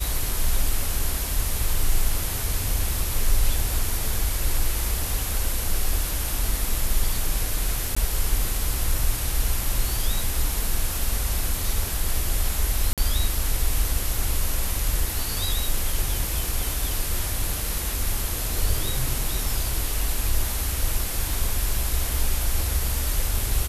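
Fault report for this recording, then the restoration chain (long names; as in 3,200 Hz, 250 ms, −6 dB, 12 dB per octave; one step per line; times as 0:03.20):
0:07.95–0:07.96: drop-out 15 ms
0:12.93–0:12.98: drop-out 47 ms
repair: repair the gap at 0:07.95, 15 ms
repair the gap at 0:12.93, 47 ms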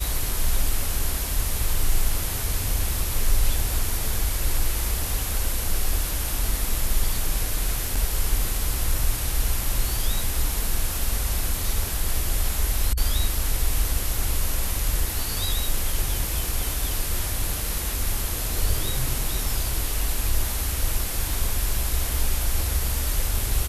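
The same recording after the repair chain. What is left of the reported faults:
none of them is left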